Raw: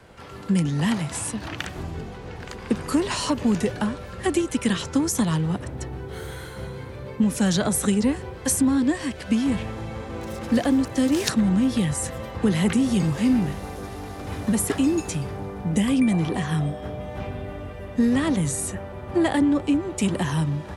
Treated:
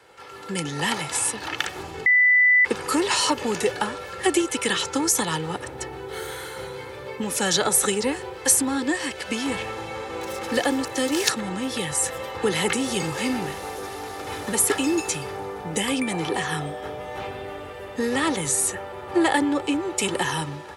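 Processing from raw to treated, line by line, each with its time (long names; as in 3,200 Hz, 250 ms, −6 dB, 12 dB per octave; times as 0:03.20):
0:02.06–0:02.65: beep over 1,990 Hz −13 dBFS
whole clip: high-pass filter 630 Hz 6 dB per octave; comb filter 2.3 ms, depth 50%; automatic gain control gain up to 5.5 dB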